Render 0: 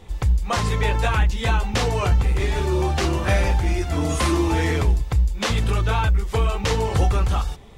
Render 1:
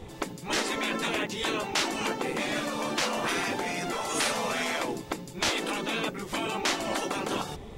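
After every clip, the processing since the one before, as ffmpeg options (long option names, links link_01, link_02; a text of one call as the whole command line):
ffmpeg -i in.wav -af "afftfilt=real='re*lt(hypot(re,im),0.158)':imag='im*lt(hypot(re,im),0.158)':win_size=1024:overlap=0.75,equalizer=frequency=340:width=0.62:gain=6" out.wav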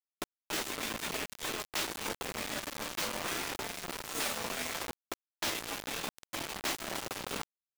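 ffmpeg -i in.wav -af "flanger=delay=4.3:depth=8:regen=-42:speed=0.81:shape=sinusoidal,acrusher=bits=4:mix=0:aa=0.000001,volume=-4dB" out.wav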